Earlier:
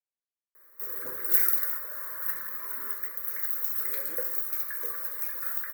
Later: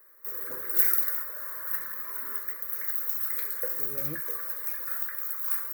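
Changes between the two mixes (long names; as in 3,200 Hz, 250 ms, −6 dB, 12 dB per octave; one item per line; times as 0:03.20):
speech: remove high-pass filter 570 Hz 12 dB per octave
background: entry −0.55 s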